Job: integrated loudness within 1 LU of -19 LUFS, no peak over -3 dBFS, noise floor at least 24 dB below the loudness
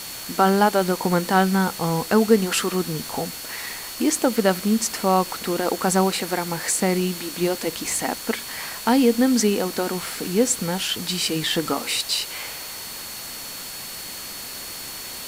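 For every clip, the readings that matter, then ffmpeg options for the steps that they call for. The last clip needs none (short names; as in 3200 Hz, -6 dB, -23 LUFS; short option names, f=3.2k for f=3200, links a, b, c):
steady tone 4400 Hz; tone level -39 dBFS; noise floor -35 dBFS; noise floor target -47 dBFS; loudness -22.5 LUFS; peak -3.5 dBFS; loudness target -19.0 LUFS
-> -af "bandreject=f=4.4k:w=30"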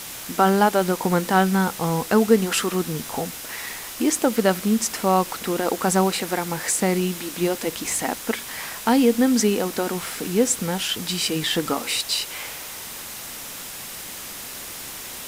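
steady tone none; noise floor -36 dBFS; noise floor target -47 dBFS
-> -af "afftdn=nr=11:nf=-36"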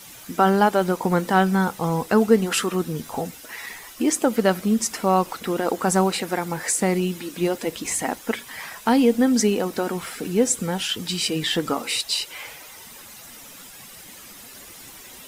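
noise floor -43 dBFS; noise floor target -47 dBFS
-> -af "afftdn=nr=6:nf=-43"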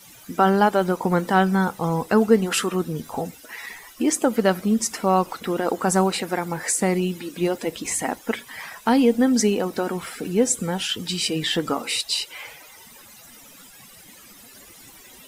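noise floor -47 dBFS; loudness -22.5 LUFS; peak -4.0 dBFS; loudness target -19.0 LUFS
-> -af "volume=3.5dB,alimiter=limit=-3dB:level=0:latency=1"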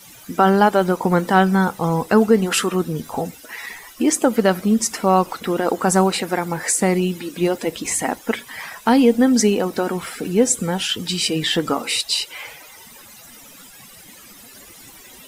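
loudness -19.0 LUFS; peak -3.0 dBFS; noise floor -44 dBFS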